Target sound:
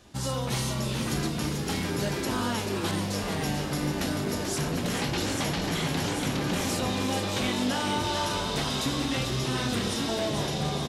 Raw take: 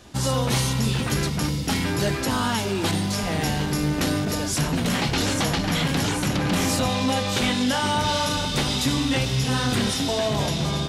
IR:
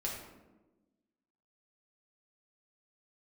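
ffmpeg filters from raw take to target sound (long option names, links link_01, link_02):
-filter_complex "[0:a]asplit=9[link_01][link_02][link_03][link_04][link_05][link_06][link_07][link_08][link_09];[link_02]adelay=438,afreqshift=96,volume=-7dB[link_10];[link_03]adelay=876,afreqshift=192,volume=-11.2dB[link_11];[link_04]adelay=1314,afreqshift=288,volume=-15.3dB[link_12];[link_05]adelay=1752,afreqshift=384,volume=-19.5dB[link_13];[link_06]adelay=2190,afreqshift=480,volume=-23.6dB[link_14];[link_07]adelay=2628,afreqshift=576,volume=-27.8dB[link_15];[link_08]adelay=3066,afreqshift=672,volume=-31.9dB[link_16];[link_09]adelay=3504,afreqshift=768,volume=-36.1dB[link_17];[link_01][link_10][link_11][link_12][link_13][link_14][link_15][link_16][link_17]amix=inputs=9:normalize=0,asplit=2[link_18][link_19];[1:a]atrim=start_sample=2205,adelay=36[link_20];[link_19][link_20]afir=irnorm=-1:irlink=0,volume=-14.5dB[link_21];[link_18][link_21]amix=inputs=2:normalize=0,volume=-7dB"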